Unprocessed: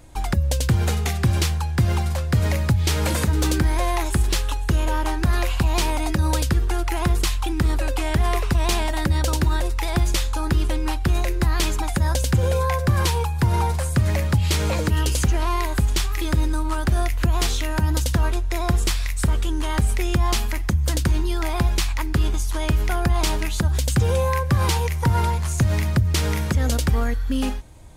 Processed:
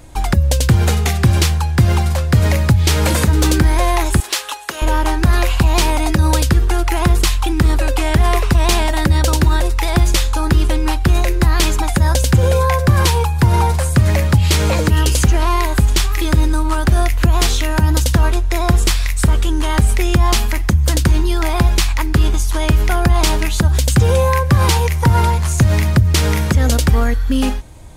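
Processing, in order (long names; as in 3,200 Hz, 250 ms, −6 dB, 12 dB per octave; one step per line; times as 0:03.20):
0:04.20–0:04.82: high-pass filter 650 Hz 12 dB per octave
level +7 dB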